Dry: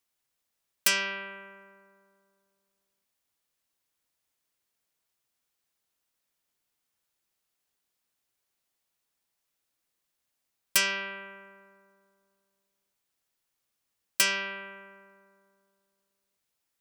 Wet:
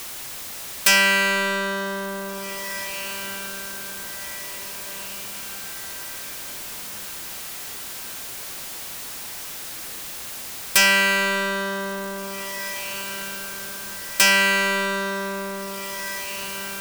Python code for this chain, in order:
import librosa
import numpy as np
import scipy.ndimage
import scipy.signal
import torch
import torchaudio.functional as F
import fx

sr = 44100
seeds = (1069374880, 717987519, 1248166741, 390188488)

y = fx.power_curve(x, sr, exponent=0.35)
y = fx.echo_diffused(y, sr, ms=1930, feedback_pct=47, wet_db=-13)